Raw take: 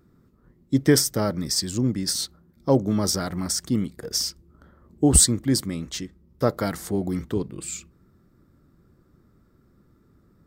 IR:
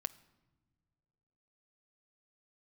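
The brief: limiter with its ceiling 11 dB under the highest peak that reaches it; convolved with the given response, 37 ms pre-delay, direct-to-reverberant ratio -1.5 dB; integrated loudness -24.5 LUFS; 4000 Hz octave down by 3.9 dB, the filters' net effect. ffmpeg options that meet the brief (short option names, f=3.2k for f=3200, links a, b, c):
-filter_complex "[0:a]equalizer=f=4k:t=o:g=-5.5,alimiter=limit=-14.5dB:level=0:latency=1,asplit=2[a][b];[1:a]atrim=start_sample=2205,adelay=37[c];[b][c]afir=irnorm=-1:irlink=0,volume=3dB[d];[a][d]amix=inputs=2:normalize=0,volume=-1dB"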